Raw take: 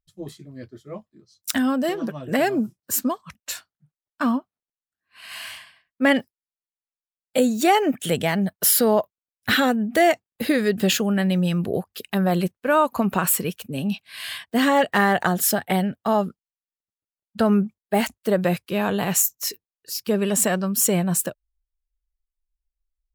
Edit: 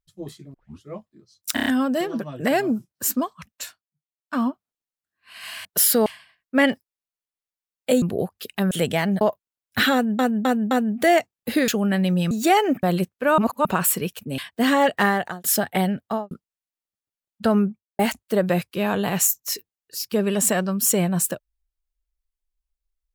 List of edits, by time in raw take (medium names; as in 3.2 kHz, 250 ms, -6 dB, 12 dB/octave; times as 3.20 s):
0.54 s: tape start 0.29 s
1.54 s: stutter 0.03 s, 5 plays
3.38–4.35 s: dip -22 dB, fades 0.37 s
7.49–8.01 s: swap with 11.57–12.26 s
8.51–8.92 s: move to 5.53 s
9.64–9.90 s: loop, 4 plays
10.61–10.94 s: delete
12.81–13.08 s: reverse
13.81–14.33 s: delete
14.98–15.39 s: fade out
16.00–16.26 s: studio fade out
17.45–17.94 s: studio fade out